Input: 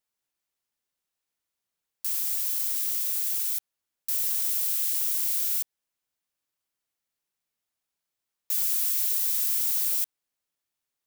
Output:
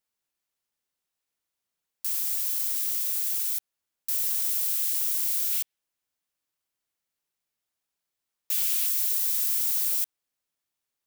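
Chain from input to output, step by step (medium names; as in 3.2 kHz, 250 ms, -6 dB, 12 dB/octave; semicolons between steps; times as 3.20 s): 5.52–8.87 s: dynamic bell 2.8 kHz, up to +7 dB, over -57 dBFS, Q 1.3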